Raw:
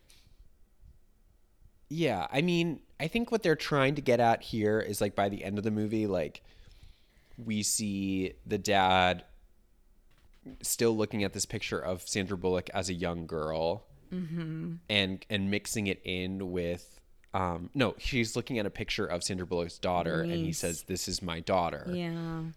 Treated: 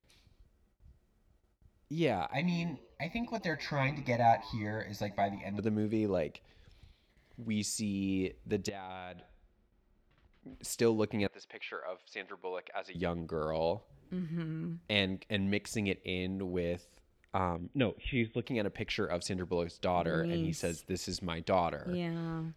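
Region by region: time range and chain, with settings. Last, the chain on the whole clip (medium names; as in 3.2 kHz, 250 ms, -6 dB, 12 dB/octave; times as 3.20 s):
2.33–5.59 s: static phaser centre 2 kHz, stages 8 + doubling 16 ms -6 dB + frequency-shifting echo 82 ms, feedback 49%, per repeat +95 Hz, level -20 dB
8.69–10.53 s: low-pass 4.2 kHz + compression 5:1, threshold -41 dBFS
11.27–12.95 s: band-pass 720–5400 Hz + distance through air 220 m
17.56–18.45 s: brick-wall FIR low-pass 3.7 kHz + peaking EQ 1.1 kHz -13 dB 0.8 oct
whole clip: gate with hold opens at -55 dBFS; high-pass 42 Hz; treble shelf 6.1 kHz -10.5 dB; trim -1.5 dB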